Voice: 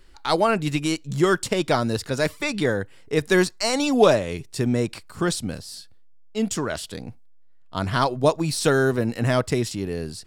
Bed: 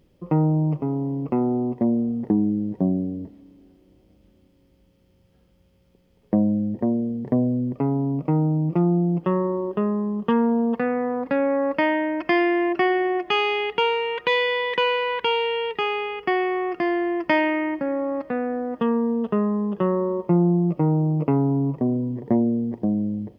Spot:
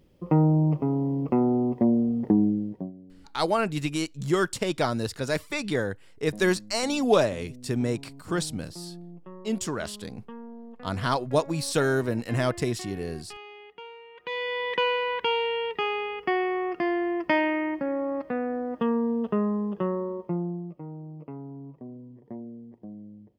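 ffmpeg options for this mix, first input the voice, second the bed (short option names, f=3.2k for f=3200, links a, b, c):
-filter_complex "[0:a]adelay=3100,volume=-4.5dB[a];[1:a]volume=18.5dB,afade=t=out:st=2.44:d=0.48:silence=0.0794328,afade=t=in:st=14.14:d=0.61:silence=0.112202,afade=t=out:st=19.49:d=1.28:silence=0.158489[b];[a][b]amix=inputs=2:normalize=0"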